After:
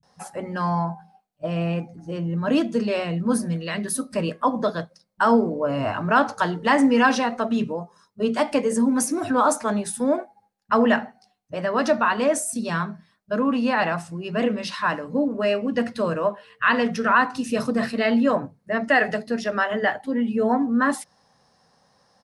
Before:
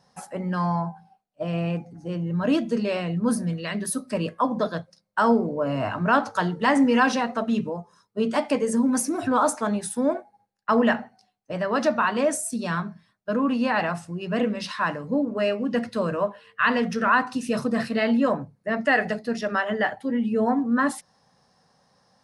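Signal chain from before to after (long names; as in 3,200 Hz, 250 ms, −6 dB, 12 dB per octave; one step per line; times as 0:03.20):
multiband delay without the direct sound lows, highs 30 ms, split 150 Hz
level +2 dB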